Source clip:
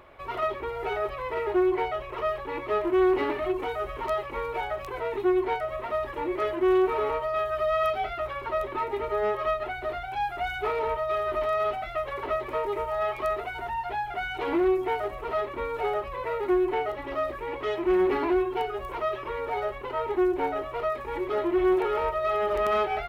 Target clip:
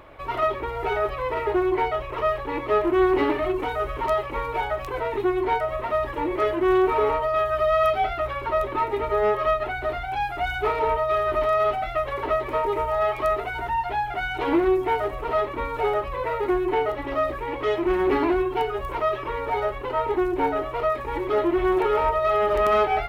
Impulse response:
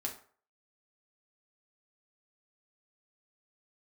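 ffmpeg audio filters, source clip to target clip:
-filter_complex "[0:a]asplit=2[s0][s1];[s1]lowshelf=f=410:g=10.5[s2];[1:a]atrim=start_sample=2205,asetrate=52920,aresample=44100[s3];[s2][s3]afir=irnorm=-1:irlink=0,volume=0.398[s4];[s0][s4]amix=inputs=2:normalize=0,volume=1.26"

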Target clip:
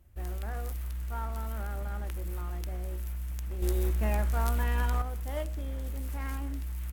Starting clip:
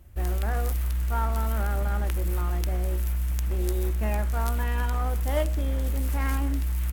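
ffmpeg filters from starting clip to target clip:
-filter_complex "[0:a]asettb=1/sr,asplit=3[s0][s1][s2];[s0]atrim=end=3.624[s3];[s1]atrim=start=3.62:end=5.02,asetpts=PTS-STARTPTS,afade=t=in:d=0.004:c=qsin,afade=t=out:st=1.396:d=0.004:c=qsin,acontrast=89[s4];[s2]atrim=start=5.016[s5];[s3][s4]acrossfade=d=0.004:c1=hsin:c2=qsin[s6];[s6][s5]acrossfade=d=0.004:c1=qsin:c2=hsin,volume=0.355"

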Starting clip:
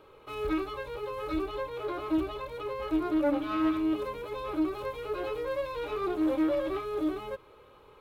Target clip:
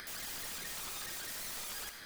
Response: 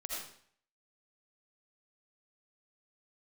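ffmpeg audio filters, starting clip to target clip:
-filter_complex "[0:a]asetrate=171549,aresample=44100,acompressor=threshold=0.0112:ratio=5,aeval=exprs='(mod(141*val(0)+1,2)-1)/141':c=same,acompressor=mode=upward:threshold=0.00355:ratio=2.5,asplit=2[s0][s1];[1:a]atrim=start_sample=2205[s2];[s1][s2]afir=irnorm=-1:irlink=0,volume=0.841[s3];[s0][s3]amix=inputs=2:normalize=0,volume=1.12"

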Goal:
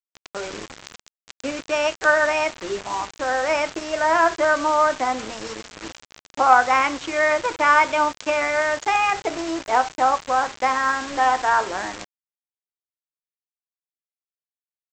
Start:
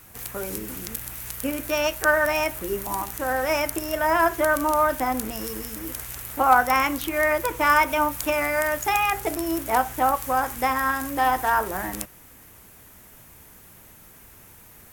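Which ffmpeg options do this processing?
-af "highpass=f=44:p=1,bass=f=250:g=-13,treble=f=4000:g=-9,aresample=16000,acrusher=bits=5:mix=0:aa=0.000001,aresample=44100,volume=1.41"

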